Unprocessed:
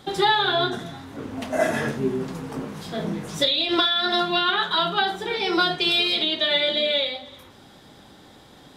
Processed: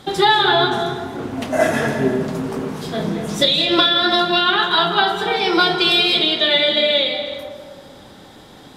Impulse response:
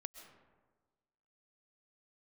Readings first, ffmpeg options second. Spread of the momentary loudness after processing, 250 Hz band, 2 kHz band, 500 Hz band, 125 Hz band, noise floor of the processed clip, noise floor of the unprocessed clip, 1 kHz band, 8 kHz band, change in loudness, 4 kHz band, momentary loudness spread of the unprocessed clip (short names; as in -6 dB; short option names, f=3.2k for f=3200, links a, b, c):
12 LU, +6.5 dB, +6.0 dB, +6.5 dB, +6.0 dB, -43 dBFS, -49 dBFS, +6.0 dB, +5.5 dB, +5.5 dB, +6.0 dB, 14 LU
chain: -filter_complex "[1:a]atrim=start_sample=2205,asetrate=30870,aresample=44100[a];[0:a][a]afir=irnorm=-1:irlink=0,volume=8.5dB"